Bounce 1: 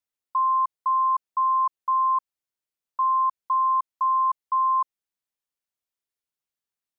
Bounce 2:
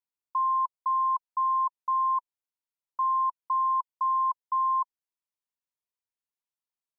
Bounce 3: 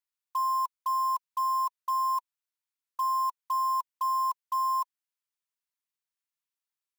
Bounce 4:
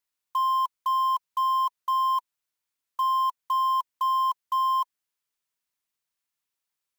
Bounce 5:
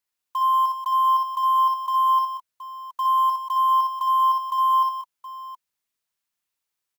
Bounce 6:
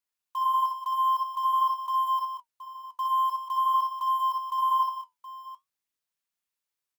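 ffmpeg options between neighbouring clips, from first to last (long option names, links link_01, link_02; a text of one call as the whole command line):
ffmpeg -i in.wav -af "equalizer=frequency=970:width_type=o:width=0.25:gain=9.5,volume=-9dB" out.wav
ffmpeg -i in.wav -af "acrusher=bits=5:mode=log:mix=0:aa=0.000001,highpass=frequency=1000:width=0.5412,highpass=frequency=1000:width=1.3066" out.wav
ffmpeg -i in.wav -af "asoftclip=type=tanh:threshold=-25.5dB,volume=6dB" out.wav
ffmpeg -i in.wav -af "aecho=1:1:62|82|186|721:0.596|0.178|0.398|0.237" out.wav
ffmpeg -i in.wav -af "flanger=delay=4.2:depth=7.9:regen=-63:speed=0.47:shape=sinusoidal,volume=-1dB" out.wav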